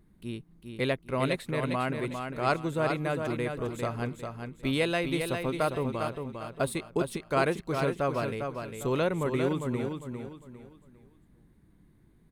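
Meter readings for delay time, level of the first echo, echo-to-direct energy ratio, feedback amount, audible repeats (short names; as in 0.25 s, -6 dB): 0.402 s, -6.0 dB, -5.5 dB, 33%, 4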